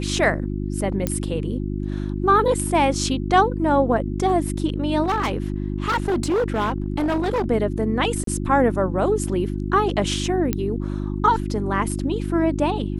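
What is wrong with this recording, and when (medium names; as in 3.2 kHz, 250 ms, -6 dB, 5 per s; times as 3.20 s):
hum 50 Hz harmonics 7 -26 dBFS
1.07 s: pop -8 dBFS
5.03–7.50 s: clipped -17.5 dBFS
8.24–8.27 s: dropout 33 ms
10.53 s: pop -8 dBFS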